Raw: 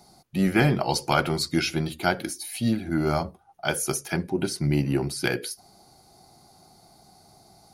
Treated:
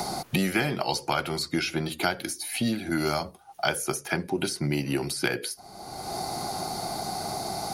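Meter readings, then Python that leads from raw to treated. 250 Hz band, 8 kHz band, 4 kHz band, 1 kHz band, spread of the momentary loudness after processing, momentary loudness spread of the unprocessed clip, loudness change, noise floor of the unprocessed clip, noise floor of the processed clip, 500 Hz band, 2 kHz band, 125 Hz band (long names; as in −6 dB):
−3.5 dB, 0.0 dB, +1.0 dB, +0.5 dB, 6 LU, 9 LU, −3.0 dB, −57 dBFS, −51 dBFS, −2.0 dB, −0.5 dB, −5.5 dB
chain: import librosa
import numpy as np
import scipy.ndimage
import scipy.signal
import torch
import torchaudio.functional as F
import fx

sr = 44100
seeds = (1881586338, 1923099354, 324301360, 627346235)

y = fx.low_shelf(x, sr, hz=270.0, db=-8.0)
y = fx.band_squash(y, sr, depth_pct=100)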